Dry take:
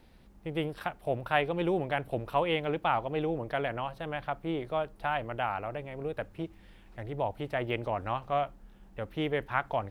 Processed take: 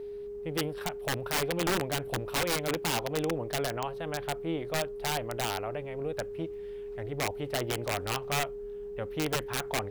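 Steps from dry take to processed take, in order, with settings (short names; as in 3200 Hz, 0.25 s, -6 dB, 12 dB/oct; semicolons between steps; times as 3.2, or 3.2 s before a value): wrapped overs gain 23 dB; whine 410 Hz -37 dBFS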